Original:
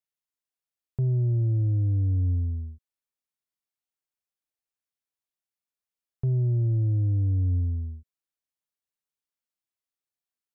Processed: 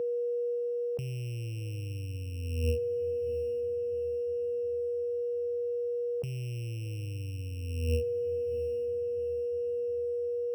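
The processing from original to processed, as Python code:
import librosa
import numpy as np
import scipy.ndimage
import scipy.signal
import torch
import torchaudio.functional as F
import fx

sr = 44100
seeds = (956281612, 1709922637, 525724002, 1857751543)

y = np.r_[np.sort(x[:len(x) // 16 * 16].reshape(-1, 16), axis=1).ravel(), x[len(x) // 16 * 16:]]
y = y + 10.0 ** (-43.0 / 20.0) * np.sin(2.0 * np.pi * 480.0 * np.arange(len(y)) / sr)
y = fx.over_compress(y, sr, threshold_db=-36.0, ratio=-1.0)
y = scipy.signal.sosfilt(scipy.signal.butter(2, 89.0, 'highpass', fs=sr, output='sos'), y)
y = fx.echo_diffused(y, sr, ms=690, feedback_pct=49, wet_db=-15.0)
y = y * librosa.db_to_amplitude(6.0)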